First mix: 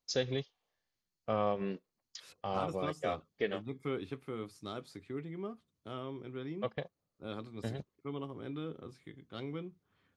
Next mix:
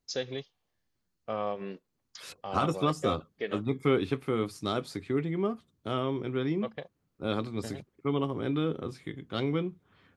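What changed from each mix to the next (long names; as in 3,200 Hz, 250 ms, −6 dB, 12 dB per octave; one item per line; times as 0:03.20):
first voice: add low-shelf EQ 130 Hz −10.5 dB
second voice +11.5 dB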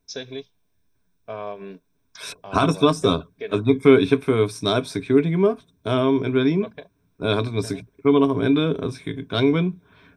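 second voice +9.0 dB
master: add EQ curve with evenly spaced ripples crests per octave 1.6, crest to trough 11 dB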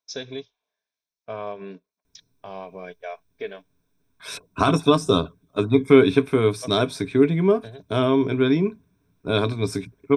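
second voice: entry +2.05 s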